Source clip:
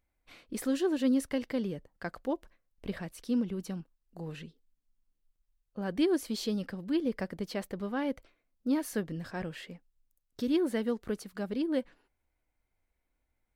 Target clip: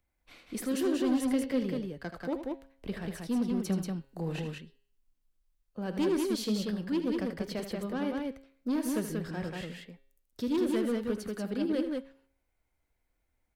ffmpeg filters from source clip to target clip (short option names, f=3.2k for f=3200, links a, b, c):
-filter_complex "[0:a]acrossover=split=190|570|2500[a][b][c][d];[c]asoftclip=type=tanh:threshold=-38dB[e];[a][b][e][d]amix=inputs=4:normalize=0,bandreject=f=135.6:t=h:w=4,bandreject=f=271.2:t=h:w=4,bandreject=f=406.8:t=h:w=4,bandreject=f=542.4:t=h:w=4,bandreject=f=678:t=h:w=4,bandreject=f=813.6:t=h:w=4,bandreject=f=949.2:t=h:w=4,bandreject=f=1.0848k:t=h:w=4,bandreject=f=1.2204k:t=h:w=4,bandreject=f=1.356k:t=h:w=4,bandreject=f=1.4916k:t=h:w=4,bandreject=f=1.6272k:t=h:w=4,bandreject=f=1.7628k:t=h:w=4,bandreject=f=1.8984k:t=h:w=4,bandreject=f=2.034k:t=h:w=4,bandreject=f=2.1696k:t=h:w=4,bandreject=f=2.3052k:t=h:w=4,bandreject=f=2.4408k:t=h:w=4,bandreject=f=2.5764k:t=h:w=4,bandreject=f=2.712k:t=h:w=4,bandreject=f=2.8476k:t=h:w=4,bandreject=f=2.9832k:t=h:w=4,bandreject=f=3.1188k:t=h:w=4,bandreject=f=3.2544k:t=h:w=4,bandreject=f=3.39k:t=h:w=4,bandreject=f=3.5256k:t=h:w=4,bandreject=f=3.6612k:t=h:w=4,bandreject=f=3.7968k:t=h:w=4,bandreject=f=3.9324k:t=h:w=4,bandreject=f=4.068k:t=h:w=4,bandreject=f=4.2036k:t=h:w=4,bandreject=f=4.3392k:t=h:w=4,bandreject=f=4.4748k:t=h:w=4,bandreject=f=4.6104k:t=h:w=4,bandreject=f=4.746k:t=h:w=4,asettb=1/sr,asplit=3[f][g][h];[f]atrim=end=3.634[i];[g]atrim=start=3.63:end=4.4,asetpts=PTS-STARTPTS,afade=t=in:d=0.004:c=qsin,afade=t=out:st=0.766:d=0.004:c=qsin,acontrast=42[j];[h]atrim=start=4.396[k];[i][j]acrossfade=d=0.004:c1=hsin:c2=qsin[l];[l][k]acrossfade=d=0.004:c1=qsin:c2=hsin,asoftclip=type=hard:threshold=-25.5dB,aecho=1:1:78.72|186.6:0.316|0.708"